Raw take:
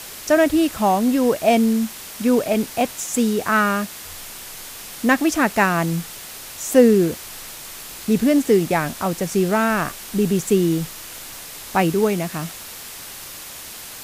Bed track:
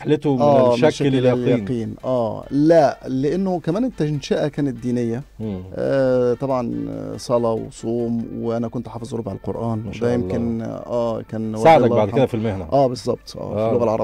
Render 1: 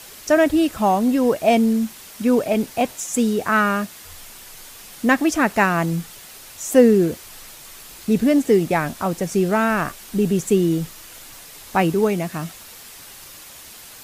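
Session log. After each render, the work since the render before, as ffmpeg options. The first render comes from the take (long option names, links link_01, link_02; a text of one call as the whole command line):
ffmpeg -i in.wav -af "afftdn=noise_reduction=6:noise_floor=-36" out.wav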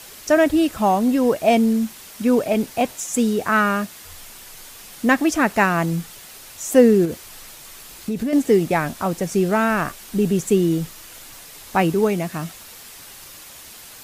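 ffmpeg -i in.wav -filter_complex "[0:a]asettb=1/sr,asplit=3[link_01][link_02][link_03];[link_01]atrim=end=7.054[link_04];[link_02]atrim=start=7.05:end=8.33,asetpts=PTS-STARTPTS,afade=type=in:duration=0.004:curve=qsin,afade=type=out:start_time=1.276:duration=0.004:curve=qsin,acompressor=threshold=-20dB:ratio=6:attack=3.2:release=140:knee=1:detection=peak[link_05];[link_03]atrim=start=8.326[link_06];[link_04][link_05]acrossfade=duration=0.004:curve1=hsin:curve2=qsin[link_07];[link_07][link_06]acrossfade=duration=0.004:curve1=qsin:curve2=hsin" out.wav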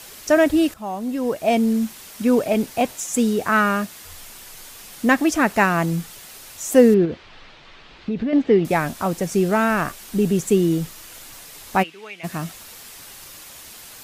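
ffmpeg -i in.wav -filter_complex "[0:a]asettb=1/sr,asplit=3[link_01][link_02][link_03];[link_01]atrim=end=6.944[link_04];[link_02]atrim=start=6.94:end=8.65,asetpts=PTS-STARTPTS,afade=type=in:duration=0.004:curve=qsin,afade=type=out:start_time=1.706:duration=0.004:curve=qsin,lowpass=frequency=3800:width=0.5412,lowpass=frequency=3800:width=1.3066[link_05];[link_03]atrim=start=8.646[link_06];[link_04][link_05]acrossfade=duration=0.004:curve1=hsin:curve2=qsin[link_07];[link_07][link_06]acrossfade=duration=0.004:curve1=qsin:curve2=hsin,asplit=3[link_08][link_09][link_10];[link_08]afade=type=out:start_time=11.82:duration=0.02[link_11];[link_09]bandpass=frequency=2600:width_type=q:width=2.2,afade=type=in:start_time=11.82:duration=0.02,afade=type=out:start_time=12.23:duration=0.02[link_12];[link_10]afade=type=in:start_time=12.23:duration=0.02[link_13];[link_11][link_12][link_13]amix=inputs=3:normalize=0,asplit=2[link_14][link_15];[link_14]atrim=end=0.74,asetpts=PTS-STARTPTS,afade=type=out:start_time=0.736:duration=0.004:curve=hsin:silence=0.158489[link_16];[link_15]atrim=start=0.74,asetpts=PTS-STARTPTS,afade=type=in:duration=1.12:silence=0.158489[link_17];[link_16][link_17]concat=n=2:v=0:a=1" out.wav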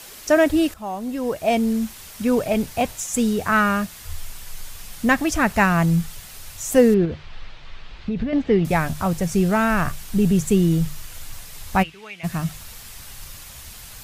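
ffmpeg -i in.wav -af "bandreject=frequency=50:width_type=h:width=6,bandreject=frequency=100:width_type=h:width=6,bandreject=frequency=150:width_type=h:width=6,asubboost=boost=8:cutoff=110" out.wav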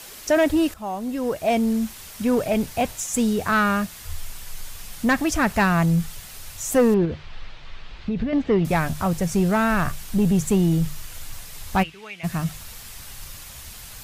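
ffmpeg -i in.wav -af "asoftclip=type=tanh:threshold=-11dB" out.wav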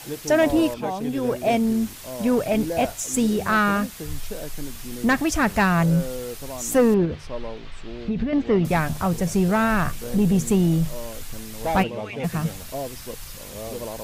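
ffmpeg -i in.wav -i bed.wav -filter_complex "[1:a]volume=-15dB[link_01];[0:a][link_01]amix=inputs=2:normalize=0" out.wav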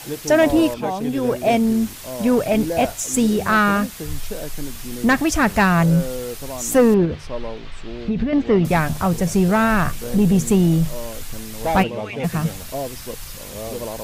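ffmpeg -i in.wav -af "volume=3.5dB" out.wav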